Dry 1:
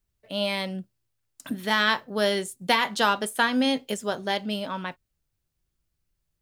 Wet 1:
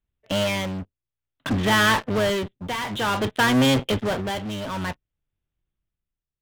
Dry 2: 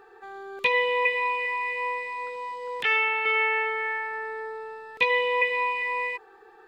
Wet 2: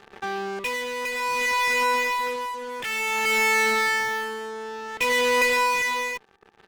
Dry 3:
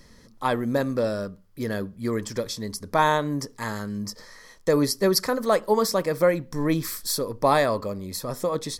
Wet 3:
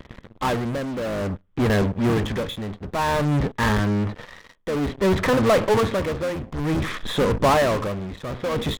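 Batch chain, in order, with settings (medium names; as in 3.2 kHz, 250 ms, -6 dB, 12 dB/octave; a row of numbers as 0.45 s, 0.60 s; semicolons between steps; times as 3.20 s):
octave divider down 1 oct, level -3 dB; resampled via 8 kHz; in parallel at -4 dB: fuzz box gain 39 dB, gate -47 dBFS; on the sum: tremolo 0.55 Hz, depth 69%; normalise loudness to -23 LUFS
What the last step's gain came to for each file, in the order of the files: -3.5 dB, -5.5 dB, -2.5 dB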